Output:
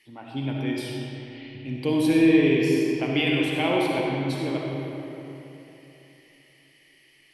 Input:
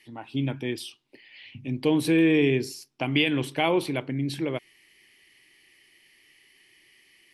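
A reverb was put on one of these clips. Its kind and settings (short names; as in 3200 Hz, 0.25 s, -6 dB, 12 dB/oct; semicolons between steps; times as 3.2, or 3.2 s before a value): digital reverb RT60 3.3 s, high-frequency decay 0.6×, pre-delay 20 ms, DRR -2.5 dB; gain -3 dB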